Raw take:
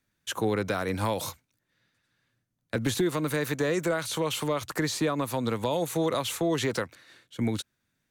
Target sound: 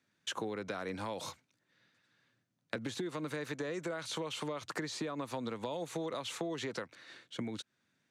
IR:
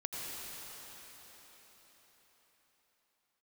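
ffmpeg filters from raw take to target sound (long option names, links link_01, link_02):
-af "acompressor=threshold=-36dB:ratio=10,highpass=150,lowpass=6700,volume=1.5dB"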